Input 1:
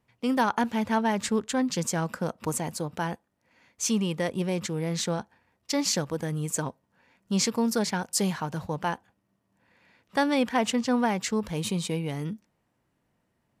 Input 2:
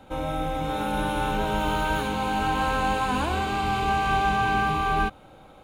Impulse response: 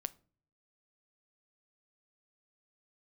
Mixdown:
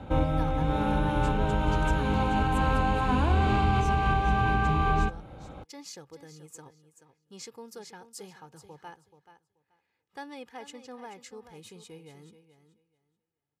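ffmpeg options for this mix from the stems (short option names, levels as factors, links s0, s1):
-filter_complex "[0:a]aecho=1:1:2.4:0.58,volume=0.119,asplit=3[s0][s1][s2];[s1]volume=0.251[s3];[1:a]aemphasis=mode=reproduction:type=bsi,volume=0.944,asplit=2[s4][s5];[s5]volume=0.708[s6];[s2]apad=whole_len=248513[s7];[s4][s7]sidechaincompress=threshold=0.00178:ratio=8:attack=16:release=416[s8];[2:a]atrim=start_sample=2205[s9];[s6][s9]afir=irnorm=-1:irlink=0[s10];[s3]aecho=0:1:431|862|1293:1|0.18|0.0324[s11];[s0][s8][s10][s11]amix=inputs=4:normalize=0,highpass=57,alimiter=limit=0.178:level=0:latency=1:release=158"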